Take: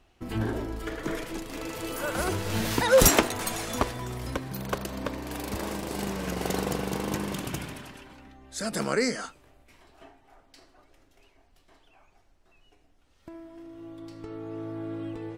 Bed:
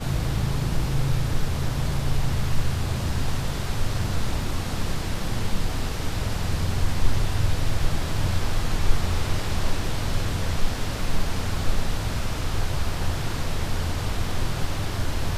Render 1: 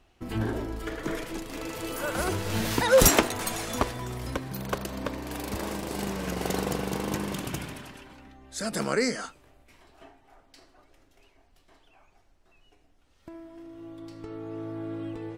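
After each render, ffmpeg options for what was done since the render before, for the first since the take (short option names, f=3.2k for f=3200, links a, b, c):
-af anull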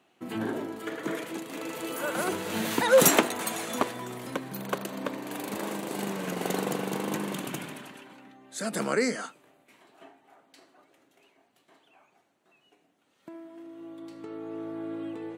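-af "highpass=f=160:w=0.5412,highpass=f=160:w=1.3066,equalizer=f=5.2k:w=3.8:g=-7.5"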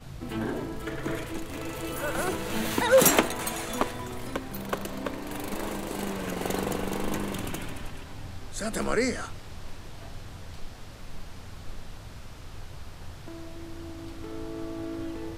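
-filter_complex "[1:a]volume=-16.5dB[a];[0:a][a]amix=inputs=2:normalize=0"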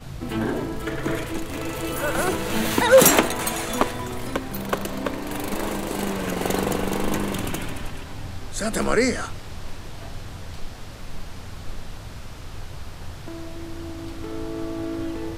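-af "volume=6dB,alimiter=limit=-3dB:level=0:latency=1"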